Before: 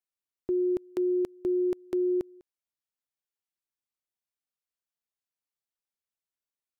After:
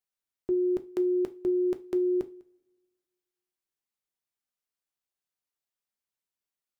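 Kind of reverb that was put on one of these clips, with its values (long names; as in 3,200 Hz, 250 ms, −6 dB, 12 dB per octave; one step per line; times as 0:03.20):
coupled-rooms reverb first 0.26 s, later 1.6 s, from −26 dB, DRR 8 dB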